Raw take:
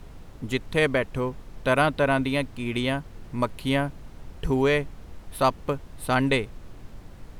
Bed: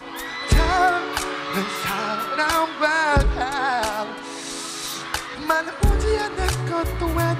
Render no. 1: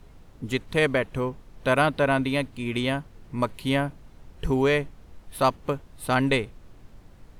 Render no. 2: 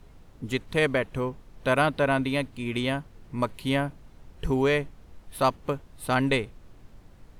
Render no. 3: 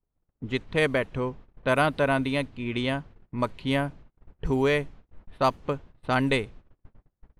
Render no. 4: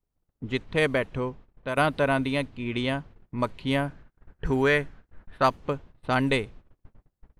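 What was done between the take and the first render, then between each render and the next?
noise print and reduce 6 dB
gain -1.5 dB
low-pass opened by the level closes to 1500 Hz, open at -20 dBFS; gate -44 dBFS, range -32 dB
1.16–1.77 fade out, to -8.5 dB; 3.88–5.47 bell 1600 Hz +10 dB 0.51 oct

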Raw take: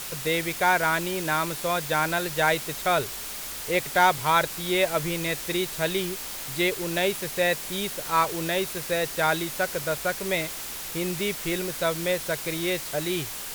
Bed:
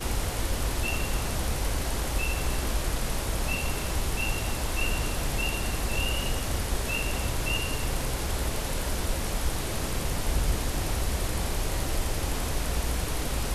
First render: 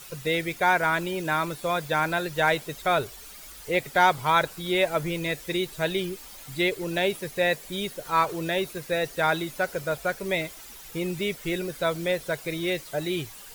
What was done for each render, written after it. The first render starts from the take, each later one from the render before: denoiser 12 dB, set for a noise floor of -36 dBFS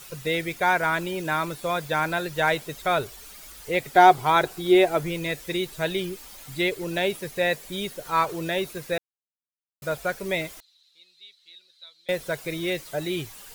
3.95–5 small resonant body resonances 370/730 Hz, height 11 dB; 8.98–9.82 mute; 10.6–12.09 band-pass 4000 Hz, Q 14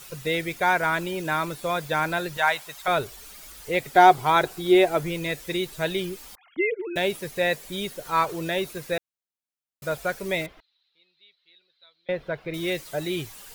2.37–2.88 resonant low shelf 570 Hz -12 dB, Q 1.5; 6.35–6.96 sine-wave speech; 10.46–12.54 air absorption 350 m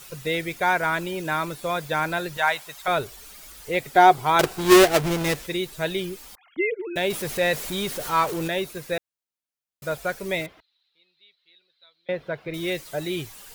4.39–5.47 half-waves squared off; 7.1–8.48 zero-crossing step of -30 dBFS; 10.4–12.48 HPF 73 Hz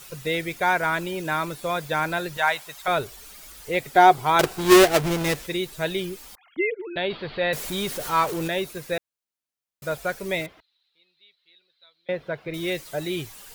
6.7–7.53 rippled Chebyshev low-pass 4600 Hz, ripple 3 dB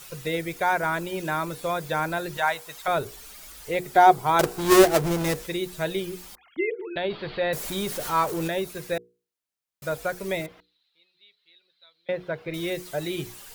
dynamic EQ 2800 Hz, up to -6 dB, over -35 dBFS, Q 0.74; notches 60/120/180/240/300/360/420/480 Hz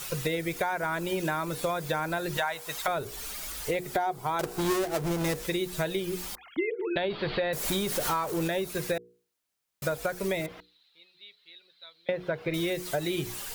in parallel at +1 dB: limiter -15.5 dBFS, peak gain reduction 11 dB; on the sum: compressor 10:1, threshold -26 dBFS, peak gain reduction 18.5 dB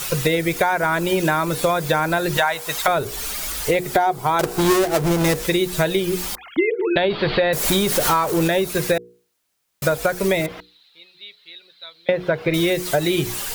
gain +10.5 dB

